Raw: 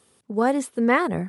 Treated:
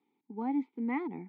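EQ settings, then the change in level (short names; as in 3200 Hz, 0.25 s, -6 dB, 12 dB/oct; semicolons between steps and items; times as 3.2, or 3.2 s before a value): vowel filter u; speaker cabinet 170–3700 Hz, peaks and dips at 310 Hz -7 dB, 640 Hz -6 dB, 1100 Hz -9 dB, 2800 Hz -10 dB; +2.5 dB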